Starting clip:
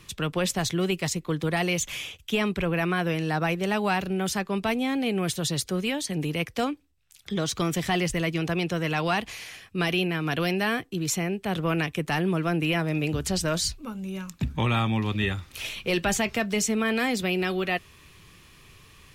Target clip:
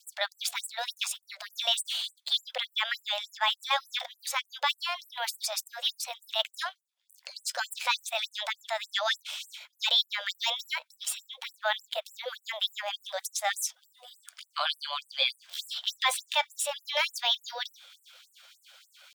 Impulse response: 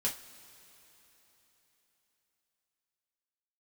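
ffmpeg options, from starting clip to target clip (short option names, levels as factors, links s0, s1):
-af "adynamicequalizer=threshold=0.00355:dfrequency=2700:dqfactor=7.5:tfrequency=2700:tqfactor=7.5:attack=5:release=100:ratio=0.375:range=4:mode=boostabove:tftype=bell,asetrate=57191,aresample=44100,atempo=0.771105,equalizer=f=13000:w=0.54:g=-7.5,afftfilt=real='re*gte(b*sr/1024,500*pow(7700/500,0.5+0.5*sin(2*PI*3.4*pts/sr)))':imag='im*gte(b*sr/1024,500*pow(7700/500,0.5+0.5*sin(2*PI*3.4*pts/sr)))':win_size=1024:overlap=0.75,volume=1.19"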